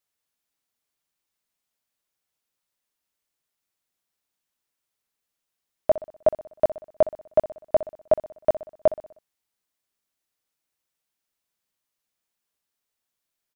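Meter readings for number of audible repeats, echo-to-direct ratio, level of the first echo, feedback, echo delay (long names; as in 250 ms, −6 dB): 4, −14.0 dB, −15.5 dB, 50%, 62 ms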